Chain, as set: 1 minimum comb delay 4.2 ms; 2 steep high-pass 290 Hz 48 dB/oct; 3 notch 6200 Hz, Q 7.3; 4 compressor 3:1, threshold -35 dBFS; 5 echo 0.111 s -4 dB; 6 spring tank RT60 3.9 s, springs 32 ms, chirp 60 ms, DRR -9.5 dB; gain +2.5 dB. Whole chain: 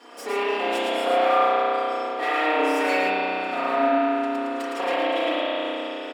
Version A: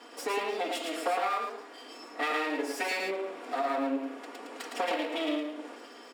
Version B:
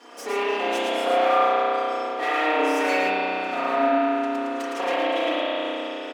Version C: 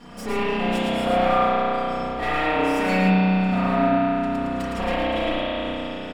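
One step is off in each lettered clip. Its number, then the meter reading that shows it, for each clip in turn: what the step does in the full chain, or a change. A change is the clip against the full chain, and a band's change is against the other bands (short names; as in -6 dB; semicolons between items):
6, echo-to-direct 11.0 dB to -4.0 dB; 3, 8 kHz band +2.0 dB; 2, 250 Hz band +7.5 dB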